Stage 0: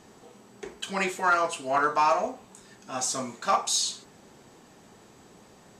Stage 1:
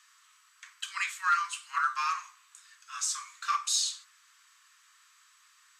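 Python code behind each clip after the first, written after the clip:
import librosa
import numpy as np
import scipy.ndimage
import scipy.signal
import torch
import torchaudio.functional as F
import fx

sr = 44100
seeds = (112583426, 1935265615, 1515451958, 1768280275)

y = scipy.signal.sosfilt(scipy.signal.butter(12, 1100.0, 'highpass', fs=sr, output='sos'), x)
y = y * librosa.db_to_amplitude(-2.0)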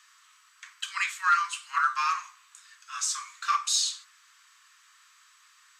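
y = fx.peak_eq(x, sr, hz=11000.0, db=-3.5, octaves=0.97)
y = y * librosa.db_to_amplitude(3.5)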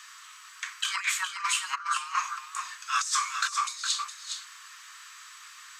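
y = fx.over_compress(x, sr, threshold_db=-34.0, ratio=-0.5)
y = y + 10.0 ** (-7.5 / 20.0) * np.pad(y, (int(413 * sr / 1000.0), 0))[:len(y)]
y = y * librosa.db_to_amplitude(4.5)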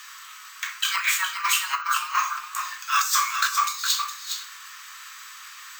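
y = fx.room_shoebox(x, sr, seeds[0], volume_m3=63.0, walls='mixed', distance_m=0.34)
y = np.repeat(y[::2], 2)[:len(y)]
y = y * librosa.db_to_amplitude(5.0)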